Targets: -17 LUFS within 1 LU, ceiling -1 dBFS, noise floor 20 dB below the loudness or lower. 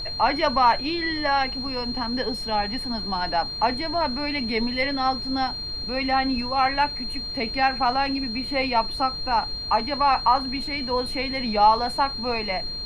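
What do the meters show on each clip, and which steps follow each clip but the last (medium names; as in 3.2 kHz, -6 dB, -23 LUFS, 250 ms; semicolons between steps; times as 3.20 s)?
steady tone 4.2 kHz; tone level -30 dBFS; noise floor -32 dBFS; noise floor target -44 dBFS; loudness -23.5 LUFS; peak level -6.5 dBFS; loudness target -17.0 LUFS
-> band-stop 4.2 kHz, Q 30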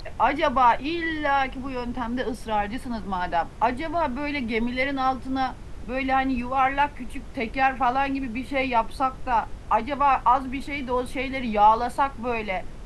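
steady tone not found; noise floor -39 dBFS; noise floor target -45 dBFS
-> noise print and reduce 6 dB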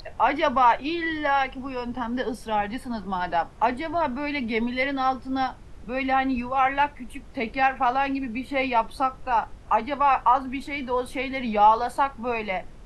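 noise floor -44 dBFS; noise floor target -45 dBFS
-> noise print and reduce 6 dB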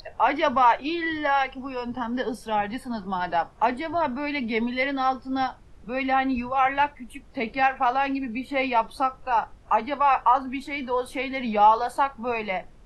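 noise floor -49 dBFS; loudness -25.0 LUFS; peak level -7.5 dBFS; loudness target -17.0 LUFS
-> trim +8 dB; peak limiter -1 dBFS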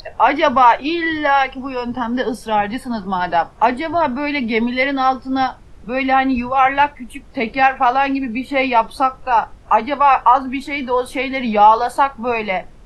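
loudness -17.0 LUFS; peak level -1.0 dBFS; noise floor -41 dBFS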